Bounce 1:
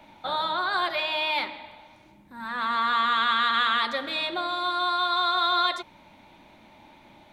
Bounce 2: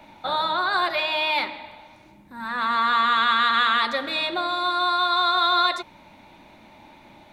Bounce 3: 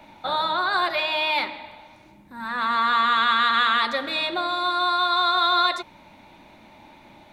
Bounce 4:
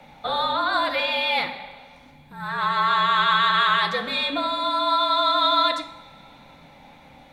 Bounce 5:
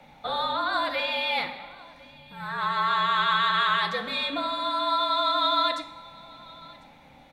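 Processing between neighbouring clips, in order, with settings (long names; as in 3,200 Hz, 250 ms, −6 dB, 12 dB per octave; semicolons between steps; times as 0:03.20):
notch filter 3,200 Hz, Q 15; level +3.5 dB
no processing that can be heard
coupled-rooms reverb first 0.63 s, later 3.3 s, from −21 dB, DRR 8.5 dB; frequency shifter −56 Hz
single-tap delay 1,048 ms −23 dB; level −4 dB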